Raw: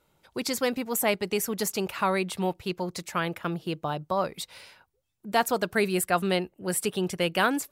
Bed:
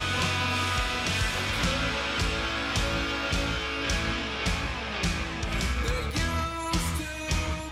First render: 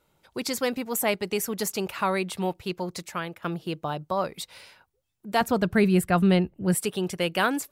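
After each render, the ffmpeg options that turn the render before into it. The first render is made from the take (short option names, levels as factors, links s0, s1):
-filter_complex "[0:a]asettb=1/sr,asplit=3[s0][s1][s2];[s0]atrim=end=5.414[s3];[s1]atrim=start=5.41:end=6.75,asetpts=PTS-STARTPTS,afade=t=in:d=0.004:c=qsin,afade=t=out:st=1.336:d=0.004:c=qsin,bass=f=250:g=14,treble=f=4000:g=-6[s4];[s2]atrim=start=6.746[s5];[s3][s4]acrossfade=d=0.004:c1=hsin:c2=qsin[s6];[s6][s5]acrossfade=d=0.004:c1=qsin:c2=hsin,asplit=2[s7][s8];[s7]atrim=end=3.42,asetpts=PTS-STARTPTS,afade=t=out:st=2.98:d=0.44:silence=0.334965[s9];[s8]atrim=start=3.42,asetpts=PTS-STARTPTS,afade=t=in:d=0.004:c=hsin:silence=0.334965[s10];[s9][s10]concat=n=2:v=0:a=1"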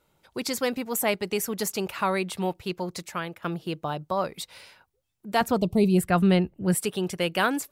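-filter_complex "[0:a]asplit=3[s0][s1][s2];[s0]afade=t=out:st=5.57:d=0.02[s3];[s1]asuperstop=centerf=1600:order=4:qfactor=0.81,afade=t=in:st=5.57:d=0.02,afade=t=out:st=5.97:d=0.02[s4];[s2]afade=t=in:st=5.97:d=0.02[s5];[s3][s4][s5]amix=inputs=3:normalize=0"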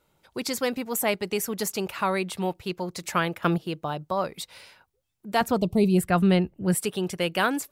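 -filter_complex "[0:a]asettb=1/sr,asplit=3[s0][s1][s2];[s0]atrim=end=3.034[s3];[s1]atrim=start=3.03:end=3.58,asetpts=PTS-STARTPTS,afade=t=in:d=0.004:c=qsin,afade=t=out:st=0.546:d=0.004:c=qsin,acontrast=89[s4];[s2]atrim=start=3.576[s5];[s3][s4]acrossfade=d=0.004:c1=hsin:c2=qsin[s6];[s6][s5]acrossfade=d=0.004:c1=qsin:c2=hsin"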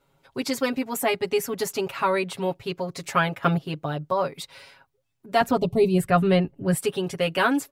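-af "highshelf=f=5100:g=-7,aecho=1:1:7.3:0.97"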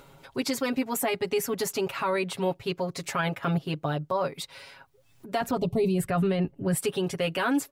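-af "acompressor=mode=upward:threshold=0.00891:ratio=2.5,alimiter=limit=0.126:level=0:latency=1:release=35"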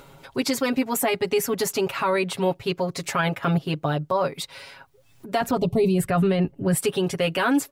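-af "volume=1.68"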